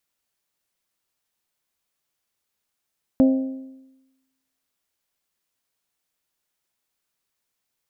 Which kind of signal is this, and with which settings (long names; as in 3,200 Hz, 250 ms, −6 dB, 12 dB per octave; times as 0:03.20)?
struck metal bell, lowest mode 264 Hz, modes 4, decay 1.02 s, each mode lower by 9 dB, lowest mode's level −10.5 dB